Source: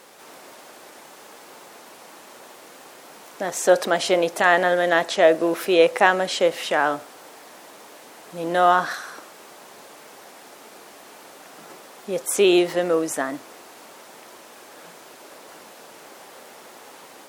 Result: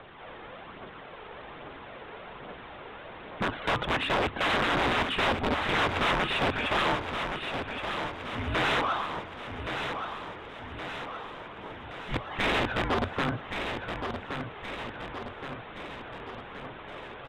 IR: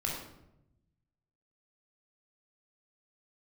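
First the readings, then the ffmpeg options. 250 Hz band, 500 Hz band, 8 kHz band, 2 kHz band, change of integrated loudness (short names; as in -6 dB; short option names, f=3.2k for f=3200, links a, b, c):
-7.0 dB, -12.5 dB, -18.5 dB, -4.5 dB, -10.0 dB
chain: -filter_complex "[0:a]highpass=180,afreqshift=-410,aphaser=in_gain=1:out_gain=1:delay=2.5:decay=0.38:speed=1.2:type=triangular,aresample=8000,aeval=exprs='(mod(7.5*val(0)+1,2)-1)/7.5':c=same,aresample=44100,asplit=2[a][b];[b]highpass=f=720:p=1,volume=16dB,asoftclip=type=tanh:threshold=-12dB[c];[a][c]amix=inputs=2:normalize=0,lowpass=f=1.6k:p=1,volume=-6dB,asplit=2[d][e];[e]aecho=0:1:1121|2242|3363|4484|5605|6726|7847:0.447|0.25|0.14|0.0784|0.0439|0.0246|0.0138[f];[d][f]amix=inputs=2:normalize=0,volume=-4.5dB"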